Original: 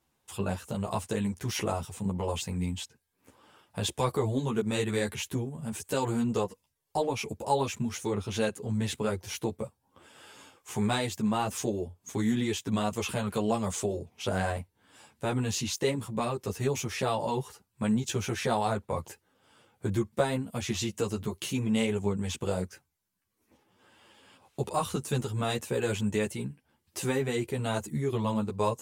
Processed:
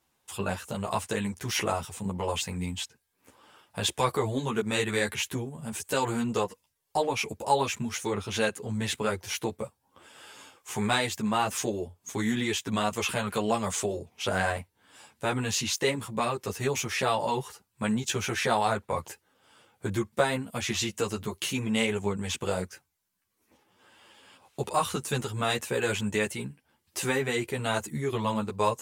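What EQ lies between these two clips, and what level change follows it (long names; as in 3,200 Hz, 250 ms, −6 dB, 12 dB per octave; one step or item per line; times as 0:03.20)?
low-shelf EQ 450 Hz −6 dB
dynamic equaliser 1,800 Hz, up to +4 dB, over −47 dBFS, Q 0.92
+3.5 dB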